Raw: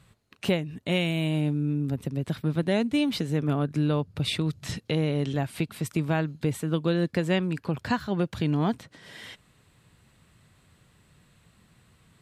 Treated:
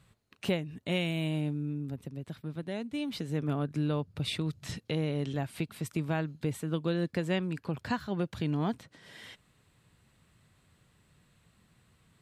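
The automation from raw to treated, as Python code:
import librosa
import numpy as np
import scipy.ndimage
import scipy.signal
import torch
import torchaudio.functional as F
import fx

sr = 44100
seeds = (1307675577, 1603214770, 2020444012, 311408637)

y = fx.gain(x, sr, db=fx.line((1.27, -5.0), (2.35, -12.0), (2.85, -12.0), (3.38, -5.5)))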